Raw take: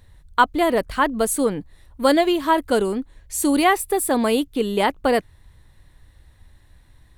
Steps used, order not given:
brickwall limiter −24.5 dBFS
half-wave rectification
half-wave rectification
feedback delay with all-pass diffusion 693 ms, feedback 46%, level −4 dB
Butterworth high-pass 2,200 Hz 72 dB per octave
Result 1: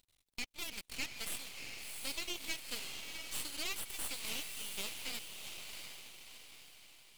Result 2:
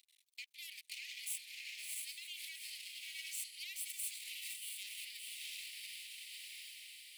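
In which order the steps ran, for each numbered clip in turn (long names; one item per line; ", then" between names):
first half-wave rectification, then Butterworth high-pass, then brickwall limiter, then feedback delay with all-pass diffusion, then second half-wave rectification
first half-wave rectification, then feedback delay with all-pass diffusion, then brickwall limiter, then second half-wave rectification, then Butterworth high-pass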